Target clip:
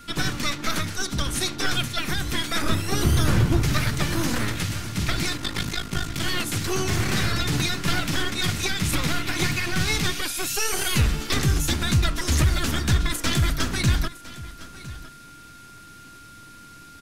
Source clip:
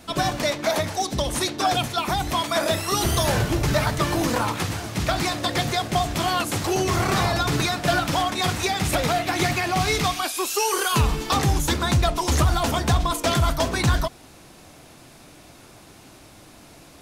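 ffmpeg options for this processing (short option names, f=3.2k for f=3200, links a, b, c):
-filter_complex "[0:a]asplit=3[a][b][c];[a]afade=t=out:st=5.37:d=0.02[d];[b]aeval=exprs='val(0)*sin(2*PI*26*n/s)':c=same,afade=t=in:st=5.37:d=0.02,afade=t=out:st=6.19:d=0.02[e];[c]afade=t=in:st=6.19:d=0.02[f];[d][e][f]amix=inputs=3:normalize=0,acrossover=split=380|1500|1900[g][h][i][j];[h]aeval=exprs='abs(val(0))':c=same[k];[g][k][i][j]amix=inputs=4:normalize=0,aeval=exprs='val(0)+0.00501*sin(2*PI*1400*n/s)':c=same,asettb=1/sr,asplit=3[l][m][n];[l]atrim=end=2.624[o];[m]atrim=start=2.62:end=3.62,asetpts=PTS-STARTPTS,afade=t=in:d=0.004:c=qsin,afade=t=out:st=0.996:d=0.004:c=qsin,tiltshelf=f=1.3k:g=4.5[p];[n]atrim=start=3.616[q];[o][p]acrossfade=d=0.004:c1=hsin:c2=qsin[r];[r][q]acrossfade=d=0.004:c1=qsin:c2=hsin,aecho=1:1:1008:0.133"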